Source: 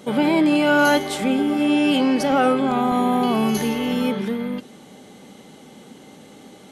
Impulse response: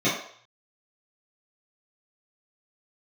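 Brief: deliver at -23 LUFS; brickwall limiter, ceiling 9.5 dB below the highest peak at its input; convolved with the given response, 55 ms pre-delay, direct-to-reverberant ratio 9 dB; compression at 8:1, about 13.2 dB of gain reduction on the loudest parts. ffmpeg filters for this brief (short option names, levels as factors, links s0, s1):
-filter_complex "[0:a]acompressor=threshold=0.0398:ratio=8,alimiter=level_in=1.58:limit=0.0631:level=0:latency=1,volume=0.631,asplit=2[s0][s1];[1:a]atrim=start_sample=2205,adelay=55[s2];[s1][s2]afir=irnorm=-1:irlink=0,volume=0.0596[s3];[s0][s3]amix=inputs=2:normalize=0,volume=4.47"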